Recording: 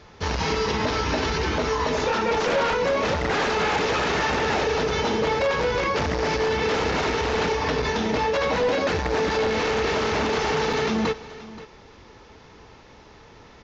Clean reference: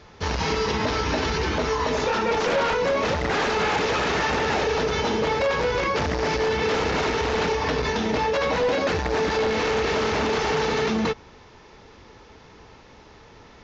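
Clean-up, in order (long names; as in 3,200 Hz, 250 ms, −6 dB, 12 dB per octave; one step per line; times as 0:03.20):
repair the gap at 0:10.73, 3.9 ms
echo removal 528 ms −17 dB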